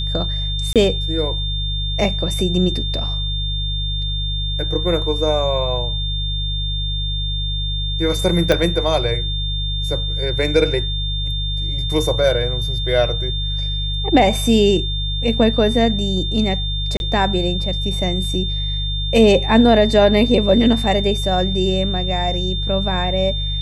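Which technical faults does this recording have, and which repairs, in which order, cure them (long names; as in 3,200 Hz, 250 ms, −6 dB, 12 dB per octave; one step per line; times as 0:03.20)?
mains hum 50 Hz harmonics 3 −23 dBFS
whistle 3,600 Hz −24 dBFS
0:00.73–0:00.76: drop-out 27 ms
0:08.52: click −3 dBFS
0:16.97–0:17.00: drop-out 31 ms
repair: click removal
notch filter 3,600 Hz, Q 30
hum removal 50 Hz, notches 3
repair the gap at 0:00.73, 27 ms
repair the gap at 0:16.97, 31 ms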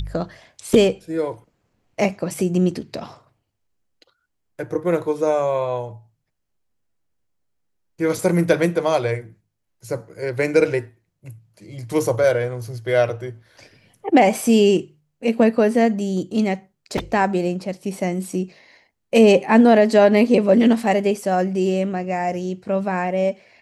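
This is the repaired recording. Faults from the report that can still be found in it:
0:08.52: click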